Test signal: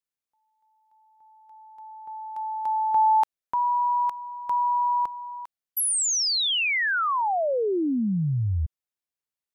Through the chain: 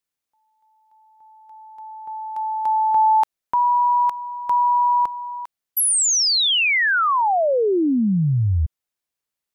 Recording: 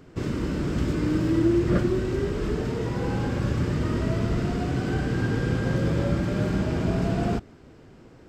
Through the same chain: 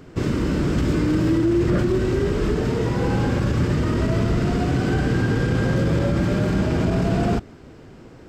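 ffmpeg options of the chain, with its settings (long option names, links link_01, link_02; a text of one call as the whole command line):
ffmpeg -i in.wav -af "alimiter=limit=-18dB:level=0:latency=1:release=23,volume=6dB" out.wav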